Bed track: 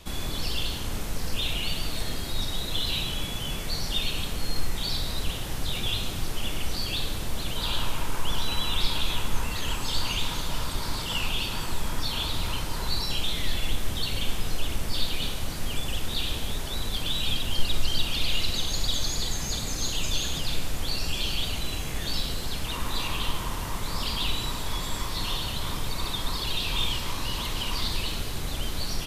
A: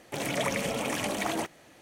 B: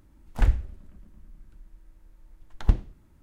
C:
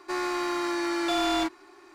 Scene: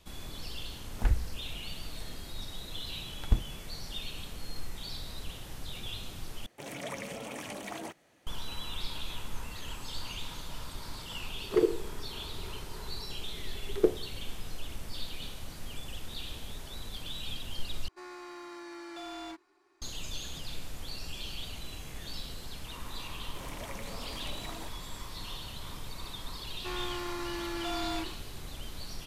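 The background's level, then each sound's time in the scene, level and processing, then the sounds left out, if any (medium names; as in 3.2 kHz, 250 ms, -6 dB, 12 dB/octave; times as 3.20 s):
bed track -11.5 dB
0.63 s: add B -5.5 dB
6.46 s: replace with A -10 dB
11.15 s: add B -3.5 dB + ring modulator 400 Hz
17.88 s: replace with C -16.5 dB
23.23 s: add A -15 dB
26.56 s: add C -9.5 dB + decay stretcher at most 140 dB/s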